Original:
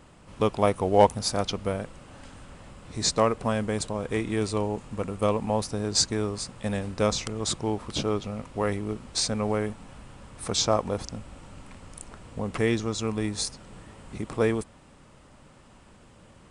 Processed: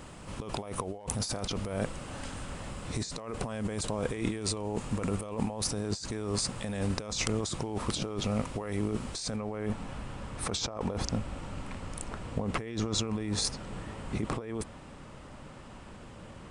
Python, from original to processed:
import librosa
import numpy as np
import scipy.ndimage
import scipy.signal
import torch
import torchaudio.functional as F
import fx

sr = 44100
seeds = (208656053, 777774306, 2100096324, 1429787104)

y = fx.high_shelf(x, sr, hz=5900.0, db=fx.steps((0.0, 4.5), (9.35, -7.0)))
y = fx.over_compress(y, sr, threshold_db=-34.0, ratio=-1.0)